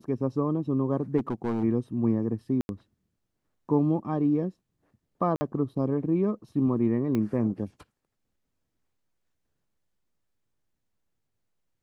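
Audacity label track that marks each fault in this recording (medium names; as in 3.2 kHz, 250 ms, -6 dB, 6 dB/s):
1.170000	1.640000	clipped -23.5 dBFS
2.610000	2.690000	dropout 81 ms
5.360000	5.410000	dropout 50 ms
7.150000	7.150000	pop -17 dBFS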